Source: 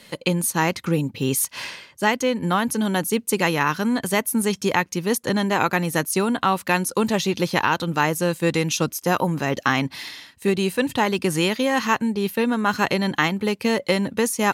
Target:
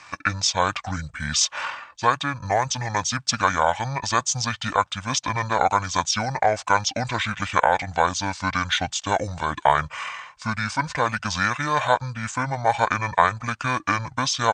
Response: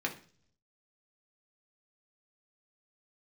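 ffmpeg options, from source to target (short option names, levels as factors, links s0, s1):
-af "asetrate=24750,aresample=44100,atempo=1.7818,lowshelf=f=550:t=q:w=1.5:g=-11,volume=1.41"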